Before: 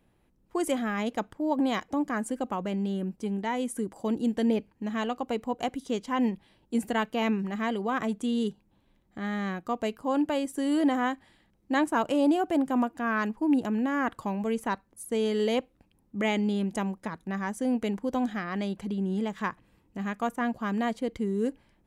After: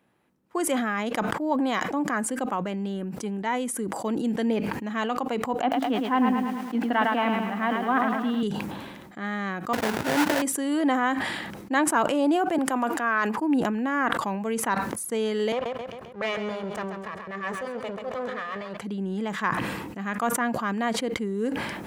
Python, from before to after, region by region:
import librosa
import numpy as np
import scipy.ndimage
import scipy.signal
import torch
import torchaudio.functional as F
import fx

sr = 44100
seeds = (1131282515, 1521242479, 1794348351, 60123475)

y = fx.chain(x, sr, fx.cabinet(low_hz=240.0, low_slope=12, high_hz=3400.0, hz=(270.0, 410.0, 790.0, 2300.0), db=(10, -8, 5, -3)),
    fx.echo_crushed(ms=107, feedback_pct=55, bits=9, wet_db=-5), at=(5.61, 8.43))
y = fx.chain(y, sr, fx.peak_eq(hz=88.0, db=12.0, octaves=1.5),
    fx.sample_hold(seeds[0], rate_hz=1200.0, jitter_pct=20), at=(9.73, 10.42))
y = fx.chain(y, sr, fx.highpass(hz=290.0, slope=12),
    fx.band_squash(depth_pct=40), at=(12.58, 13.38))
y = fx.chain(y, sr, fx.lower_of_two(delay_ms=1.7),
    fx.lowpass(hz=2500.0, slope=6),
    fx.echo_feedback(ms=134, feedback_pct=34, wet_db=-10.0), at=(15.52, 18.77))
y = scipy.signal.sosfilt(scipy.signal.butter(2, 150.0, 'highpass', fs=sr, output='sos'), y)
y = fx.peak_eq(y, sr, hz=1400.0, db=5.5, octaves=1.6)
y = fx.sustainer(y, sr, db_per_s=34.0)